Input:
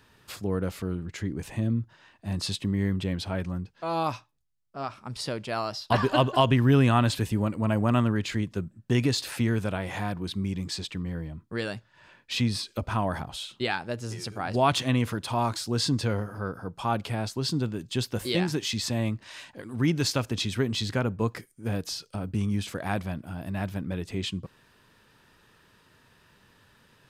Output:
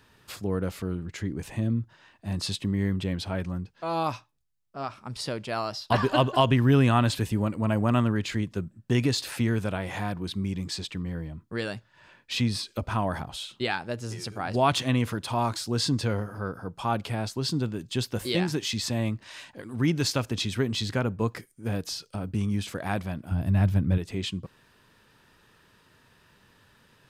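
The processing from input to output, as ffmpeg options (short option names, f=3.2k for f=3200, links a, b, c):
-filter_complex "[0:a]asettb=1/sr,asplit=3[a][b][c];[a]atrim=end=23.314[d];[b]atrim=start=23.31:end=23.98,asetpts=PTS-STARTPTS,afade=t=in:d=0.004:c=qsin,afade=t=out:st=0.666:d=0.004:c=qsin,equalizer=f=86:w=0.58:g=13[e];[c]atrim=start=23.976[f];[d][e]acrossfade=d=0.004:c1=hsin:c2=qsin[g];[g][f]acrossfade=d=0.004:c1=qsin:c2=hsin"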